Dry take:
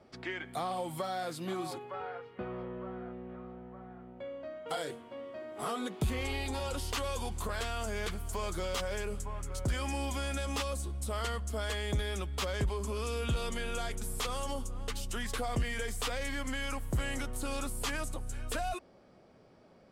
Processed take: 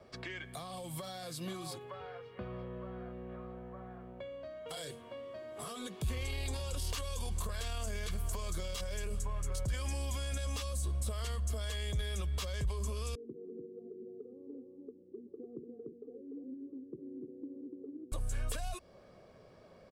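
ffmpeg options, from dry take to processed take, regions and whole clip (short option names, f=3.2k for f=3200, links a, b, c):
-filter_complex "[0:a]asettb=1/sr,asplit=3[a][b][c];[a]atrim=end=13.154[d];[b]atrim=start=13.15:end=18.12,asetpts=PTS-STARTPTS,afade=t=in:d=0.004:c=qsin,afade=t=out:st=4.966:d=0.004:c=qsin,asuperpass=centerf=270:order=8:qfactor=1.3,aecho=1:1:2.5:0.9,atrim=end_sample=219177,aecho=1:1:294:0.631,atrim=end_sample=219177[e];[c]atrim=start=18.116[f];[d][e]acrossfade=d=0.004:c1=hsin:c2=qsin[g];[g][f]acrossfade=d=0.004:c1=qsin:c2=hsin,aecho=1:1:1.8:0.4,alimiter=level_in=5dB:limit=-24dB:level=0:latency=1:release=13,volume=-5dB,acrossover=split=220|3000[h][i][j];[i]acompressor=threshold=-46dB:ratio=6[k];[h][k][j]amix=inputs=3:normalize=0,volume=1.5dB"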